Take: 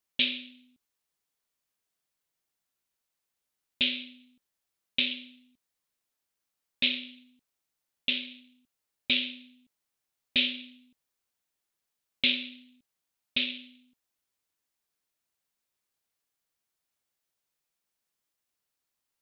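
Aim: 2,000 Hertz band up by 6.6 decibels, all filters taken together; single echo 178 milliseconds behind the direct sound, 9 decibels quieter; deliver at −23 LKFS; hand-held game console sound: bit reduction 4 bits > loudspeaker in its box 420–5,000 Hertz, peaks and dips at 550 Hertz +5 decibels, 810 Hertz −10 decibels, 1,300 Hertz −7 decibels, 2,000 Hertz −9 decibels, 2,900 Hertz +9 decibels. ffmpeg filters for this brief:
ffmpeg -i in.wav -af "equalizer=frequency=2000:width_type=o:gain=6.5,aecho=1:1:178:0.355,acrusher=bits=3:mix=0:aa=0.000001,highpass=420,equalizer=frequency=550:width_type=q:width=4:gain=5,equalizer=frequency=810:width_type=q:width=4:gain=-10,equalizer=frequency=1300:width_type=q:width=4:gain=-7,equalizer=frequency=2000:width_type=q:width=4:gain=-9,equalizer=frequency=2900:width_type=q:width=4:gain=9,lowpass=frequency=5000:width=0.5412,lowpass=frequency=5000:width=1.3066" out.wav

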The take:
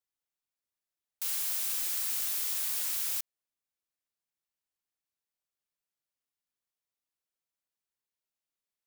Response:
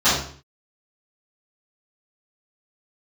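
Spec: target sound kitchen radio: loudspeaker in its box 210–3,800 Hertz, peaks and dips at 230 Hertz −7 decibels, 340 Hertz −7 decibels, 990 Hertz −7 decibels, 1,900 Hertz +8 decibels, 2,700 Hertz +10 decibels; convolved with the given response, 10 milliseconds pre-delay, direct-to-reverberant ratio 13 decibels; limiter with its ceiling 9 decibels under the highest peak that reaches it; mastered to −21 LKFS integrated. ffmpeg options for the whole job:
-filter_complex "[0:a]alimiter=level_in=5dB:limit=-24dB:level=0:latency=1,volume=-5dB,asplit=2[link_01][link_02];[1:a]atrim=start_sample=2205,adelay=10[link_03];[link_02][link_03]afir=irnorm=-1:irlink=0,volume=-34dB[link_04];[link_01][link_04]amix=inputs=2:normalize=0,highpass=210,equalizer=frequency=230:width_type=q:width=4:gain=-7,equalizer=frequency=340:width_type=q:width=4:gain=-7,equalizer=frequency=990:width_type=q:width=4:gain=-7,equalizer=frequency=1900:width_type=q:width=4:gain=8,equalizer=frequency=2700:width_type=q:width=4:gain=10,lowpass=frequency=3800:width=0.5412,lowpass=frequency=3800:width=1.3066,volume=24.5dB"

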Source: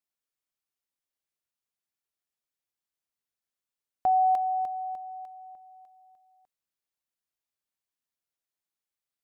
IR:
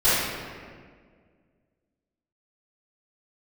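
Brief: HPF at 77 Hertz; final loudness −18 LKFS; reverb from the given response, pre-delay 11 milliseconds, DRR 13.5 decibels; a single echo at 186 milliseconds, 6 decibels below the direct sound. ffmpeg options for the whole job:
-filter_complex "[0:a]highpass=77,aecho=1:1:186:0.501,asplit=2[link_01][link_02];[1:a]atrim=start_sample=2205,adelay=11[link_03];[link_02][link_03]afir=irnorm=-1:irlink=0,volume=-32.5dB[link_04];[link_01][link_04]amix=inputs=2:normalize=0,volume=10.5dB"

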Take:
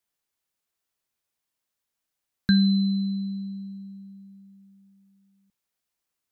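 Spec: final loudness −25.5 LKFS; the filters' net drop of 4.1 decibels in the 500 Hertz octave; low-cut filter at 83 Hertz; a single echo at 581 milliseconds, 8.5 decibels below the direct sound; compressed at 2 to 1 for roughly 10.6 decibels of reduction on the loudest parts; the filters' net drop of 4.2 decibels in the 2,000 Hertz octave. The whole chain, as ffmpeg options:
ffmpeg -i in.wav -af "highpass=83,equalizer=frequency=500:width_type=o:gain=-6.5,equalizer=frequency=2000:width_type=o:gain=-5.5,acompressor=threshold=-37dB:ratio=2,aecho=1:1:581:0.376,volume=9dB" out.wav

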